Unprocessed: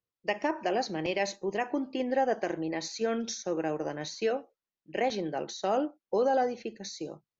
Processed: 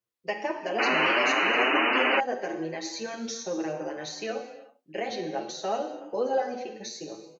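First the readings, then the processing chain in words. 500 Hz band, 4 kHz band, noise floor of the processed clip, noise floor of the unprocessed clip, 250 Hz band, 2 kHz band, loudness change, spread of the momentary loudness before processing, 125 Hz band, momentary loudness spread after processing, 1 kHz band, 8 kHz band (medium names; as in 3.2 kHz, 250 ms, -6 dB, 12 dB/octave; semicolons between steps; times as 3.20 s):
0.0 dB, +8.5 dB, -65 dBFS, under -85 dBFS, 0.0 dB, +11.5 dB, +4.0 dB, 8 LU, -2.5 dB, 15 LU, +3.5 dB, no reading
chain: bass shelf 140 Hz -9.5 dB; in parallel at -2.5 dB: compression, threshold -36 dBFS, peak gain reduction 12.5 dB; on the sum: gated-style reverb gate 410 ms falling, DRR 5 dB; painted sound noise, 0.78–2.20 s, 220–3000 Hz -21 dBFS; endless flanger 7 ms +2.8 Hz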